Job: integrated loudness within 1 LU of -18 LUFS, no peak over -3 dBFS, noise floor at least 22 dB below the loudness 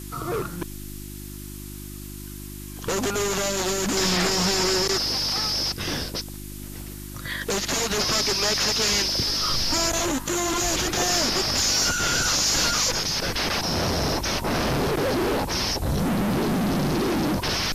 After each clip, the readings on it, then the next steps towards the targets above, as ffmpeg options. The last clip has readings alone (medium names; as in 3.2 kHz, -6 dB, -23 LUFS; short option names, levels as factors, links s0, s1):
hum 50 Hz; highest harmonic 350 Hz; hum level -35 dBFS; noise floor -37 dBFS; noise floor target -45 dBFS; loudness -22.5 LUFS; peak level -13.0 dBFS; loudness target -18.0 LUFS
-> -af "bandreject=f=50:t=h:w=4,bandreject=f=100:t=h:w=4,bandreject=f=150:t=h:w=4,bandreject=f=200:t=h:w=4,bandreject=f=250:t=h:w=4,bandreject=f=300:t=h:w=4,bandreject=f=350:t=h:w=4"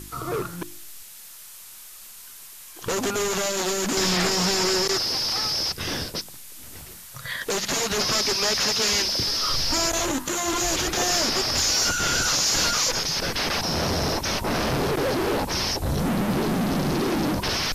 hum not found; noise floor -43 dBFS; noise floor target -45 dBFS
-> -af "afftdn=nr=6:nf=-43"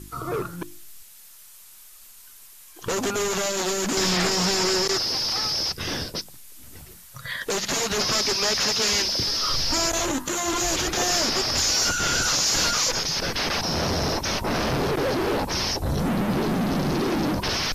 noise floor -47 dBFS; loudness -23.0 LUFS; peak level -14.0 dBFS; loudness target -18.0 LUFS
-> -af "volume=1.78"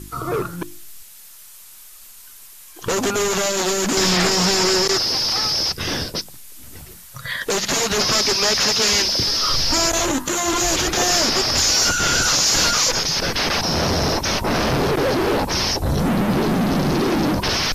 loudness -18.0 LUFS; peak level -8.5 dBFS; noise floor -42 dBFS